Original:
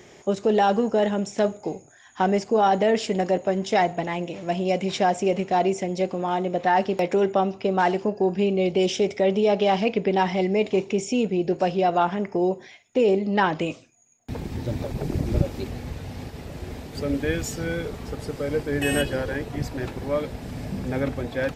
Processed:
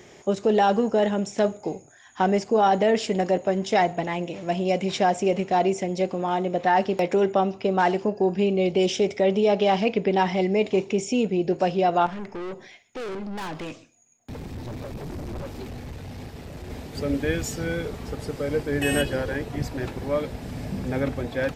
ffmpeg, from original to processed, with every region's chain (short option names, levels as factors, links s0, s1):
-filter_complex "[0:a]asettb=1/sr,asplit=3[s0][s1][s2];[s0]atrim=end=12.064[s3];[s1]atrim=start=12.06:end=16.7,asetpts=PTS-STARTPTS,afade=t=in:d=0.004:c=qsin,afade=t=out:st=4.636:d=0.004:c=qsin,aeval=exprs='(tanh(35.5*val(0)+0.25)-tanh(0.25))/35.5':c=same,aecho=1:1:131:0.0794,atrim=end_sample=204624[s4];[s2]atrim=start=16.696[s5];[s3][s4]acrossfade=d=0.004:c1=hsin:c2=qsin[s6];[s6][s5]acrossfade=d=0.004:c1=qsin:c2=hsin"